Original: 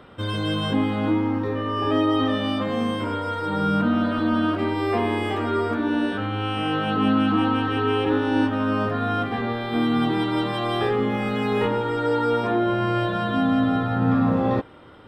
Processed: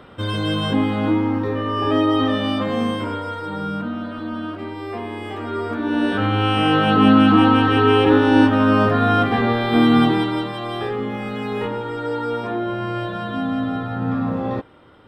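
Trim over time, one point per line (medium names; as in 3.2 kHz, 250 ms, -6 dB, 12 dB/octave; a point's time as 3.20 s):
2.86 s +3 dB
3.97 s -6.5 dB
5.11 s -6.5 dB
5.81 s 0 dB
6.25 s +7.5 dB
9.99 s +7.5 dB
10.53 s -2.5 dB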